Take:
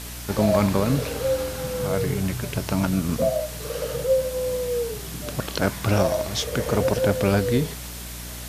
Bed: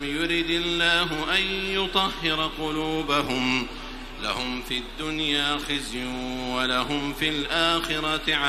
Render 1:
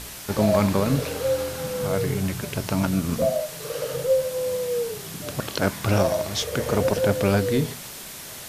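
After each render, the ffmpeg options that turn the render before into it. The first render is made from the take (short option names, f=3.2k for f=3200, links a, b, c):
-af "bandreject=f=60:t=h:w=4,bandreject=f=120:t=h:w=4,bandreject=f=180:t=h:w=4,bandreject=f=240:t=h:w=4,bandreject=f=300:t=h:w=4"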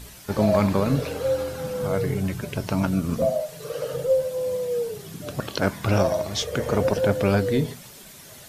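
-af "afftdn=nr=9:nf=-38"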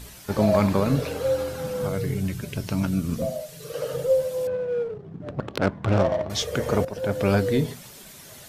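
-filter_complex "[0:a]asettb=1/sr,asplit=3[a][b][c];[a]atrim=end=1.894[d];[b]atrim=start=1.89:end=3.74,asetpts=PTS-STARTPTS,afade=t=in:d=0.004:c=qsin,afade=t=out:st=1.846:d=0.004:c=qsin,equalizer=f=820:w=0.68:g=-8[e];[c]atrim=start=3.736[f];[d][e]acrossfade=d=0.004:c1=hsin:c2=qsin[g];[g][f]acrossfade=d=0.004:c1=qsin:c2=hsin,asettb=1/sr,asplit=3[h][i][j];[h]atrim=end=4.474[k];[i]atrim=start=4.47:end=6.3,asetpts=PTS-STARTPTS,afade=t=in:d=0.004:c=qsin,afade=t=out:st=1.826:d=0.004:c=qsin,adynamicsmooth=sensitivity=1.5:basefreq=620[l];[j]atrim=start=6.296[m];[k][l]acrossfade=d=0.004:c1=hsin:c2=qsin[n];[n][m]acrossfade=d=0.004:c1=qsin:c2=hsin,asplit=2[o][p];[o]atrim=end=6.85,asetpts=PTS-STARTPTS,afade=t=out:st=6.846:d=0.004:c=hsin:silence=0.141254[q];[p]atrim=start=6.85,asetpts=PTS-STARTPTS,afade=t=in:d=0.46:silence=0.141254[r];[q][r]concat=n=2:v=0:a=1"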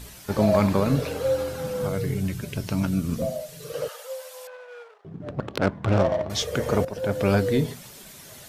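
-filter_complex "[0:a]asettb=1/sr,asplit=3[a][b][c];[a]atrim=end=3.884[d];[b]atrim=start=3.88:end=5.05,asetpts=PTS-STARTPTS,afade=t=in:d=0.004:c=qsin,afade=t=out:st=1.166:d=0.004:c=qsin,highpass=f=810:w=0.5412,highpass=f=810:w=1.3066[e];[c]atrim=start=5.046[f];[d][e]acrossfade=d=0.004:c1=hsin:c2=qsin[g];[g][f]acrossfade=d=0.004:c1=qsin:c2=hsin"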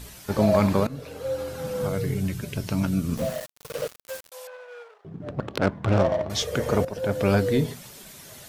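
-filter_complex "[0:a]asettb=1/sr,asplit=3[a][b][c];[a]atrim=end=3.174[d];[b]atrim=start=3.17:end=4.32,asetpts=PTS-STARTPTS,afade=t=in:d=0.004:c=qsin,afade=t=out:st=1.146:d=0.004:c=qsin,aeval=exprs='val(0)*gte(abs(val(0)),0.0237)':c=same[e];[c]atrim=start=4.316[f];[d][e]acrossfade=d=0.004:c1=hsin:c2=qsin[g];[g][f]acrossfade=d=0.004:c1=qsin:c2=hsin,asplit=2[h][i];[h]atrim=end=0.87,asetpts=PTS-STARTPTS,afade=t=out:st=0.866:d=0.004:c=hsin:silence=0.125893[j];[i]atrim=start=0.87,asetpts=PTS-STARTPTS,afade=t=in:d=0.93:silence=0.125893[k];[j][k]concat=n=2:v=0:a=1"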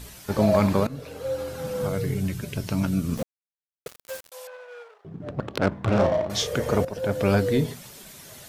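-filter_complex "[0:a]asettb=1/sr,asplit=3[a][b][c];[a]atrim=end=5.684[d];[b]atrim=start=5.68:end=6.53,asetpts=PTS-STARTPTS,afade=t=in:d=0.004:c=qsin,afade=t=out:st=0.846:d=0.004:c=qsin,asplit=2[e][f];[f]adelay=34,volume=-6dB[g];[e][g]amix=inputs=2:normalize=0,atrim=end_sample=37485[h];[c]atrim=start=6.526[i];[d][h]acrossfade=d=0.004:c1=hsin:c2=qsin[j];[j][i]acrossfade=d=0.004:c1=qsin:c2=hsin,asplit=3[k][l][m];[k]atrim=end=3.23,asetpts=PTS-STARTPTS,afade=t=out:st=3.226:d=0.004:c=hsin[n];[l]atrim=start=3.23:end=3.86,asetpts=PTS-STARTPTS,volume=0[o];[m]atrim=start=3.86,asetpts=PTS-STARTPTS,afade=t=in:d=0.004:c=hsin[p];[n][o][p]concat=n=3:v=0:a=1"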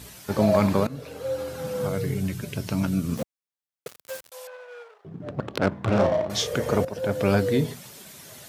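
-af "highpass=80"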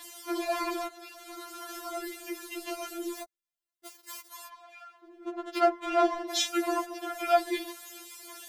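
-af "aphaser=in_gain=1:out_gain=1:delay=3:decay=0.46:speed=1.5:type=sinusoidal,afftfilt=real='re*4*eq(mod(b,16),0)':imag='im*4*eq(mod(b,16),0)':win_size=2048:overlap=0.75"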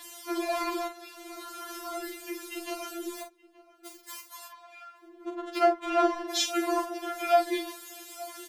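-filter_complex "[0:a]asplit=2[a][b];[b]adelay=42,volume=-7.5dB[c];[a][c]amix=inputs=2:normalize=0,asplit=2[d][e];[e]adelay=874.6,volume=-19dB,highshelf=f=4k:g=-19.7[f];[d][f]amix=inputs=2:normalize=0"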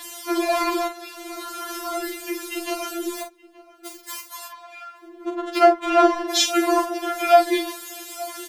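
-af "volume=8.5dB"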